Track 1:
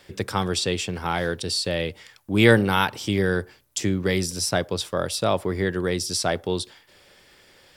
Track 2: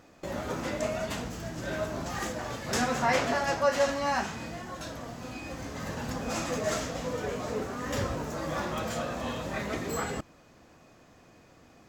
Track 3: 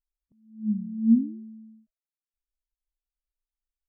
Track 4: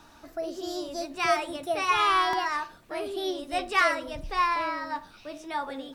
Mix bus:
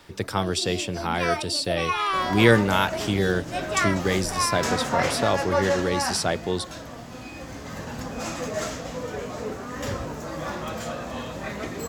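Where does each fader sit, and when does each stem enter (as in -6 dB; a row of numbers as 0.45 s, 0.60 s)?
-1.0 dB, +1.0 dB, -19.5 dB, -2.0 dB; 0.00 s, 1.90 s, 0.00 s, 0.00 s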